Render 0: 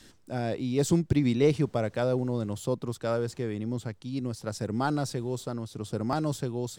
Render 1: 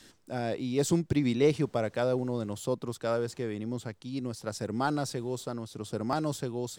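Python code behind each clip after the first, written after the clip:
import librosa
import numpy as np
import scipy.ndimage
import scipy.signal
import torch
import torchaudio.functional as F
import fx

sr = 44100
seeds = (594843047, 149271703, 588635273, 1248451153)

y = fx.low_shelf(x, sr, hz=170.0, db=-7.0)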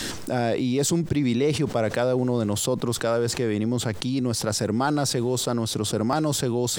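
y = fx.env_flatten(x, sr, amount_pct=70)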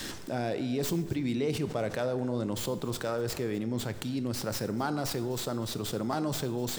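y = fx.tracing_dist(x, sr, depth_ms=0.091)
y = y + 10.0 ** (-21.5 / 20.0) * np.pad(y, (int(248 * sr / 1000.0), 0))[:len(y)]
y = fx.rev_plate(y, sr, seeds[0], rt60_s=1.2, hf_ratio=0.6, predelay_ms=0, drr_db=11.0)
y = y * 10.0 ** (-8.0 / 20.0)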